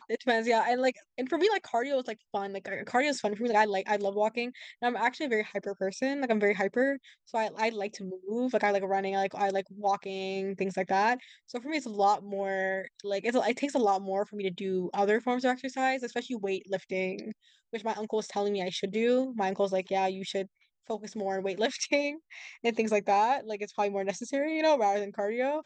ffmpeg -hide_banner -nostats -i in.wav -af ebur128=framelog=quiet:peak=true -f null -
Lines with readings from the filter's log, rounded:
Integrated loudness:
  I:         -29.9 LUFS
  Threshold: -40.1 LUFS
Loudness range:
  LRA:         2.4 LU
  Threshold: -50.3 LUFS
  LRA low:   -31.6 LUFS
  LRA high:  -29.2 LUFS
True peak:
  Peak:      -12.2 dBFS